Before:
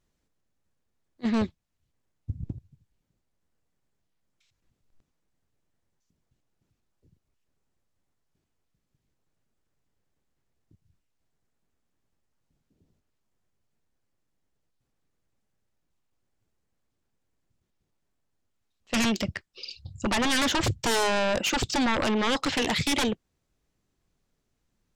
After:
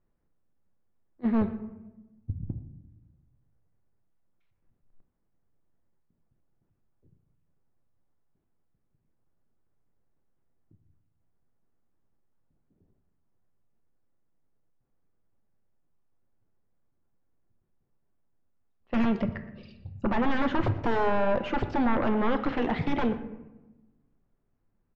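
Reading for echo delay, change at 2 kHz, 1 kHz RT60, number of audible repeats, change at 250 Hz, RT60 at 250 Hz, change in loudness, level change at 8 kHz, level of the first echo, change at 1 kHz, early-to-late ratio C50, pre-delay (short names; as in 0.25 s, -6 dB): 0.119 s, -6.0 dB, 0.95 s, 1, +1.0 dB, 1.4 s, -2.5 dB, under -30 dB, -18.5 dB, -0.5 dB, 11.0 dB, 3 ms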